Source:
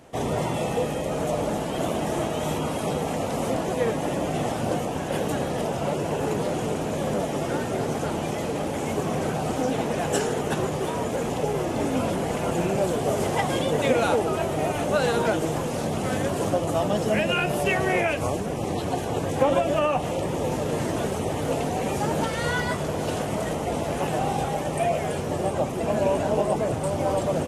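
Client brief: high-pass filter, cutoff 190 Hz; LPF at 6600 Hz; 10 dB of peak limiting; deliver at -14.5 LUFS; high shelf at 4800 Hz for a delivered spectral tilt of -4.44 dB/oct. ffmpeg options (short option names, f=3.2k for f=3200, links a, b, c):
-af "highpass=190,lowpass=6.6k,highshelf=f=4.8k:g=-3,volume=13.5dB,alimiter=limit=-5dB:level=0:latency=1"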